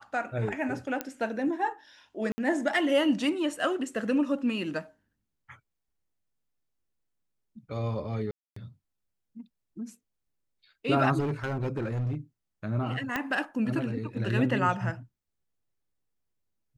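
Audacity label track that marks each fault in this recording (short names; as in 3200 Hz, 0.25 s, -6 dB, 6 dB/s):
1.010000	1.010000	pop -15 dBFS
2.320000	2.380000	gap 60 ms
8.310000	8.560000	gap 0.254 s
11.190000	12.150000	clipped -26 dBFS
13.160000	13.160000	pop -15 dBFS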